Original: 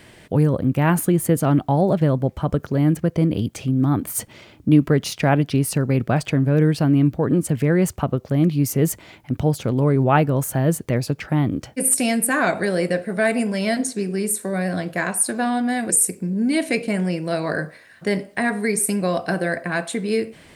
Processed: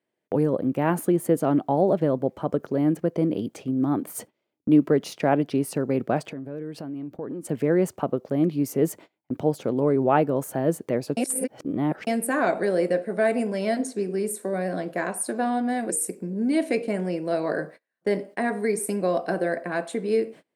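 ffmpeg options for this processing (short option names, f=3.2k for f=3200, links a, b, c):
-filter_complex "[0:a]asettb=1/sr,asplit=3[a][b][c];[a]atrim=end=6.284[d];[b]atrim=start=6.28:end=7.45,asetpts=PTS-STARTPTS,afade=t=in:d=0.004:c=qsin,afade=t=out:st=1.166:d=0.004:c=qsin,acompressor=threshold=-25dB:ratio=20:attack=3.2:release=140:knee=1:detection=peak[e];[c]atrim=start=7.446[f];[d][e]acrossfade=d=0.004:c1=hsin:c2=qsin[g];[g][f]acrossfade=d=0.004:c1=qsin:c2=hsin,asplit=3[h][i][j];[h]atrim=end=11.172[k];[i]atrim=start=11.168:end=12.072,asetpts=PTS-STARTPTS,areverse[l];[j]atrim=start=12.068[m];[k][l]acrossfade=d=0.004:c1=hsin:c2=hsin[n];[n][m]acrossfade=d=0.004:c1=hsin:c2=hsin,highpass=400,tiltshelf=f=720:g=8.5,agate=range=-30dB:threshold=-40dB:ratio=16:detection=peak,volume=-1.5dB"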